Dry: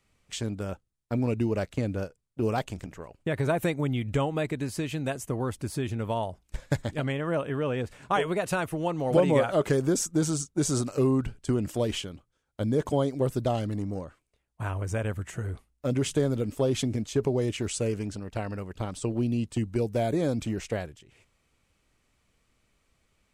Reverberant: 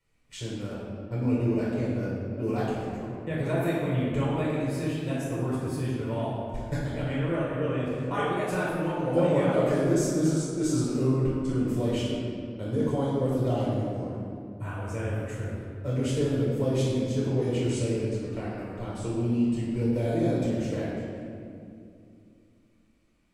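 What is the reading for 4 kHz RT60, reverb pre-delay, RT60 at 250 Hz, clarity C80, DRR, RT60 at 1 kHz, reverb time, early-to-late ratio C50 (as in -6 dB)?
1.4 s, 4 ms, 3.6 s, 0.0 dB, -7.5 dB, 2.2 s, 2.5 s, -2.0 dB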